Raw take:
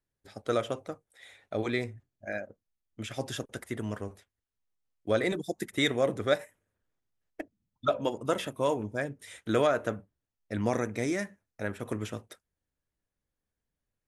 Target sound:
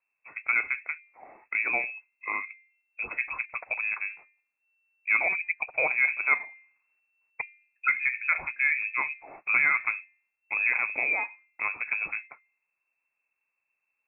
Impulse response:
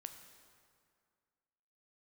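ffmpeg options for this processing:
-filter_complex "[0:a]bandreject=f=299.3:t=h:w=4,bandreject=f=598.6:t=h:w=4,bandreject=f=897.9:t=h:w=4,asplit=2[s0][s1];[s1]acompressor=threshold=0.02:ratio=6,volume=0.944[s2];[s0][s2]amix=inputs=2:normalize=0,lowpass=f=2300:t=q:w=0.5098,lowpass=f=2300:t=q:w=0.6013,lowpass=f=2300:t=q:w=0.9,lowpass=f=2300:t=q:w=2.563,afreqshift=-2700"

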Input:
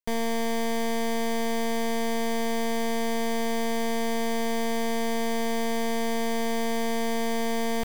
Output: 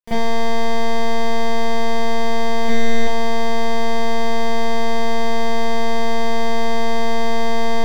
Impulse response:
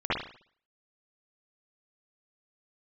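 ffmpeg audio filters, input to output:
-filter_complex "[0:a]asettb=1/sr,asplit=3[s0][s1][s2];[s0]atrim=end=2.634[s3];[s1]atrim=start=2.63:end=3.03,asetpts=PTS-STARTPTS,afade=t=in:d=0.004:c=qsin,afade=t=out:st=0.396:d=0.004:c=qsin,asplit=2[s4][s5];[s5]adelay=18,volume=0.631[s6];[s4][s6]amix=inputs=2:normalize=0,atrim=end_sample=17640[s7];[s2]atrim=start=3.026[s8];[s3][s7]acrossfade=d=0.004:c1=hsin:c2=qsin[s9];[s9][s8]acrossfade=d=0.004:c1=qsin:c2=hsin[s10];[1:a]atrim=start_sample=2205,asetrate=66150,aresample=44100[s11];[s10][s11]afir=irnorm=-1:irlink=0"

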